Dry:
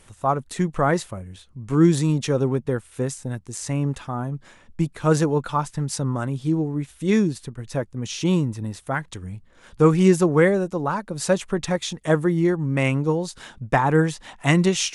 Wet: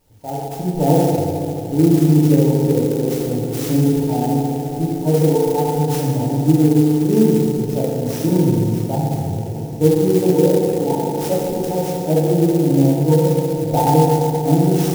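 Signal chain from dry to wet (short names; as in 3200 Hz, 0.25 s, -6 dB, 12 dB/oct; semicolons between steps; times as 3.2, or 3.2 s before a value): FFT band-reject 940–4900 Hz; AGC gain up to 11.5 dB; on a send: diffused feedback echo 0.571 s, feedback 73%, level -13 dB; on the sum: FDN reverb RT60 2.6 s, low-frequency decay 0.85×, high-frequency decay 0.5×, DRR -7.5 dB; clock jitter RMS 0.04 ms; gain -10.5 dB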